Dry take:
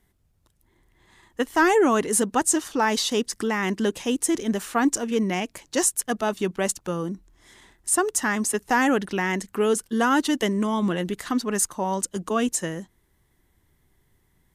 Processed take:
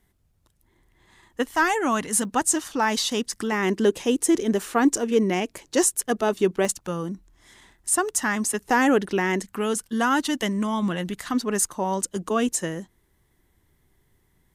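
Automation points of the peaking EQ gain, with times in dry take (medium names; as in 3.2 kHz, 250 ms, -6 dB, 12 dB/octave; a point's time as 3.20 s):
peaking EQ 400 Hz
-0.5 dB
from 1.51 s -10.5 dB
from 2.25 s -4 dB
from 3.52 s +6 dB
from 6.65 s -3 dB
from 8.64 s +5 dB
from 9.43 s -6 dB
from 11.34 s +1.5 dB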